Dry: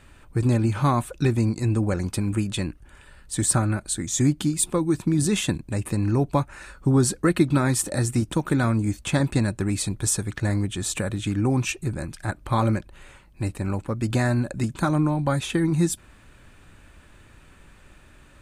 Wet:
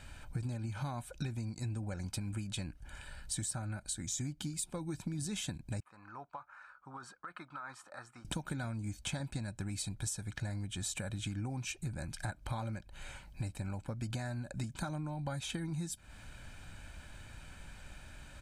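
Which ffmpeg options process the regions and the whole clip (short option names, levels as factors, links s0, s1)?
-filter_complex "[0:a]asettb=1/sr,asplit=3[s0][s1][s2];[s0]atrim=end=5.804[s3];[s1]atrim=start=5.8:end=8.25,asetpts=PTS-STARTPTS,afade=t=in:d=0.004:c=qsin,afade=t=out:st=2.446:d=0.004:c=qsin,bandpass=f=1200:t=q:w=6.4,acompressor=threshold=0.0141:ratio=10:attack=3.2:release=140:knee=1:detection=peak[s4];[s2]atrim=start=8.246[s5];[s3][s4]acrossfade=d=0.004:c1=hsin:c2=qsin[s6];[s6][s5]acrossfade=d=0.004:c1=qsin:c2=hsin,equalizer=f=5200:w=0.84:g=5,aecho=1:1:1.3:0.5,acompressor=threshold=0.0224:ratio=12,volume=0.75"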